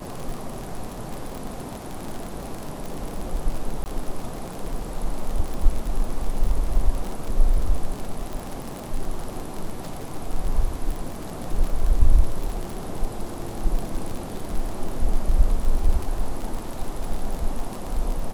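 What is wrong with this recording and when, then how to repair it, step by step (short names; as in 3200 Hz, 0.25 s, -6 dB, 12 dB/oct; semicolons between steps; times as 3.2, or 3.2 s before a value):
crackle 46/s -26 dBFS
3.84–3.86 gap 19 ms
8.33 pop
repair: de-click; interpolate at 3.84, 19 ms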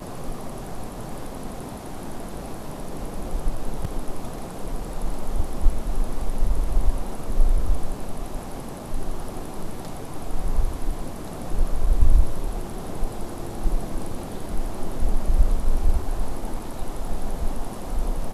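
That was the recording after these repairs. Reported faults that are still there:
none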